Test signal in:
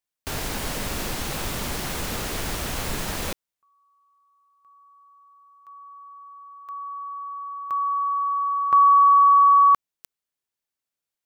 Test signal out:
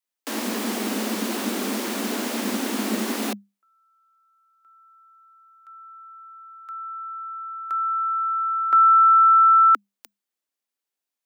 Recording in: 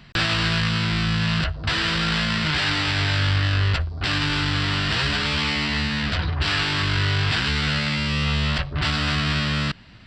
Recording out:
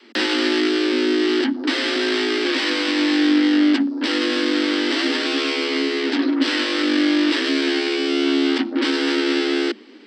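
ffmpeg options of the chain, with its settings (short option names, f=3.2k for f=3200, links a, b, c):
-af "afreqshift=200,adynamicequalizer=threshold=0.02:dfrequency=280:dqfactor=1.2:tfrequency=280:tqfactor=1.2:attack=5:release=100:ratio=0.375:range=2.5:mode=boostabove:tftype=bell"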